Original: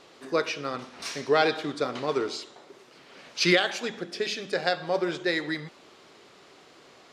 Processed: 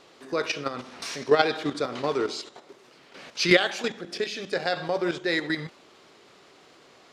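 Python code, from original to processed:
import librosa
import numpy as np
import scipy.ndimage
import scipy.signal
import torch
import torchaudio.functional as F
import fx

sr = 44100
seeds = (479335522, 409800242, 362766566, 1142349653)

y = fx.level_steps(x, sr, step_db=10)
y = F.gain(torch.from_numpy(y), 5.5).numpy()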